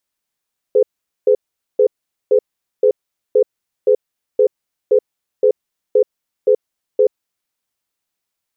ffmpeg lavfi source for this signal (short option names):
-f lavfi -i "aevalsrc='0.282*(sin(2*PI*423*t)+sin(2*PI*505*t))*clip(min(mod(t,0.52),0.08-mod(t,0.52))/0.005,0,1)':d=6.36:s=44100"